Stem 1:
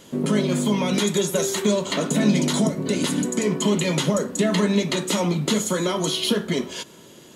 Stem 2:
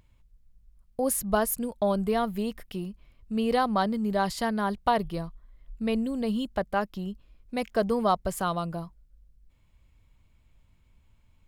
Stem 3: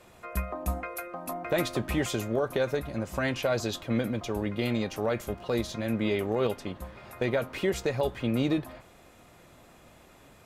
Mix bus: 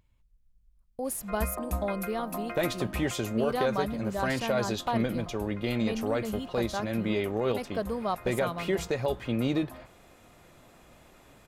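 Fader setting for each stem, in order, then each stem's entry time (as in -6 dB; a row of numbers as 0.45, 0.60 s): off, -6.5 dB, -1.0 dB; off, 0.00 s, 1.05 s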